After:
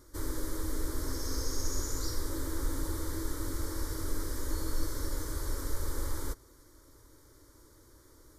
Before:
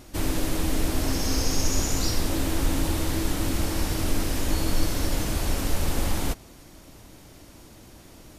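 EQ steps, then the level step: fixed phaser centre 720 Hz, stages 6; -7.5 dB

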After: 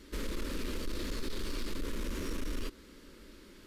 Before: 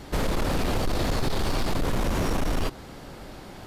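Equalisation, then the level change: fixed phaser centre 310 Hz, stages 4; -9.0 dB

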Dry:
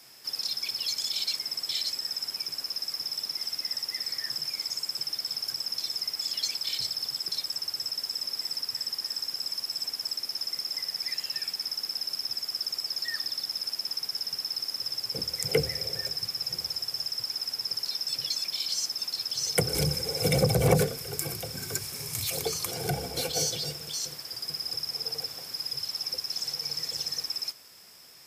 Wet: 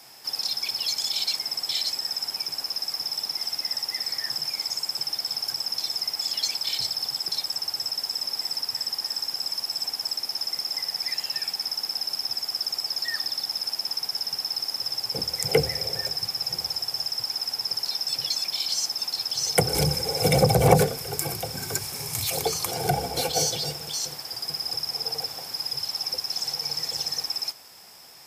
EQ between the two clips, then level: bell 810 Hz +8.5 dB 0.56 oct; +3.5 dB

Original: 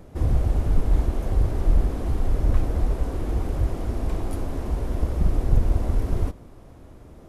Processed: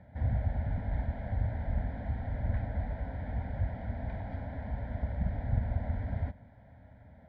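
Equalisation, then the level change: speaker cabinet 100–2500 Hz, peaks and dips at 150 Hz -7 dB, 340 Hz -8 dB, 480 Hz -9 dB, 750 Hz -4 dB, 1100 Hz -10 dB; fixed phaser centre 1800 Hz, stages 8; 0.0 dB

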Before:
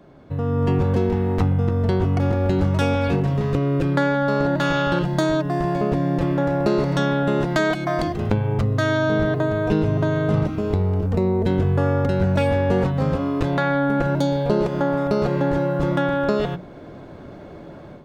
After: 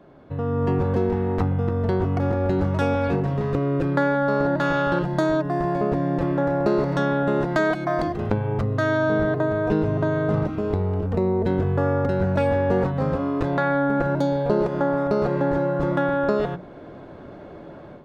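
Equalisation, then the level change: dynamic EQ 3000 Hz, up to -6 dB, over -46 dBFS, Q 2.1; tone controls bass -4 dB, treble -9 dB; bell 2200 Hz -2.5 dB 0.28 oct; 0.0 dB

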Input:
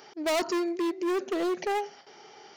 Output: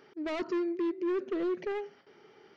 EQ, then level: tape spacing loss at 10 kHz 34 dB; bell 770 Hz -12 dB 0.68 oct; 0.0 dB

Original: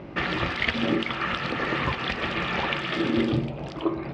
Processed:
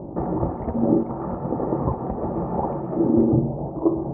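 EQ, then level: Chebyshev low-pass 890 Hz, order 4; +6.5 dB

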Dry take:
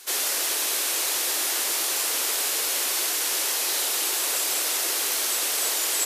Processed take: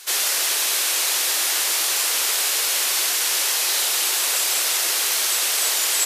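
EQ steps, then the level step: HPF 300 Hz 6 dB/oct; LPF 3600 Hz 6 dB/oct; tilt +2.5 dB/oct; +4.0 dB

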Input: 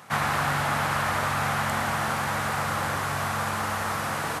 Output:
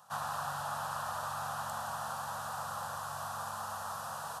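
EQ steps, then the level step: low shelf 190 Hz -11 dB; bell 270 Hz -9.5 dB 0.37 oct; fixed phaser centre 890 Hz, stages 4; -8.5 dB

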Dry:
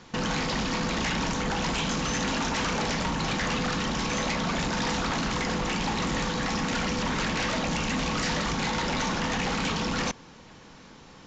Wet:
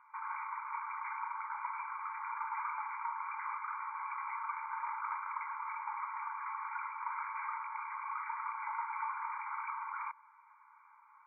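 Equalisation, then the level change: brick-wall FIR band-pass 840–2400 Hz; air absorption 310 m; fixed phaser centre 1800 Hz, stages 6; -2.0 dB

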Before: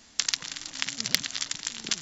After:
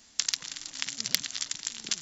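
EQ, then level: high shelf 4400 Hz +7.5 dB; -6.0 dB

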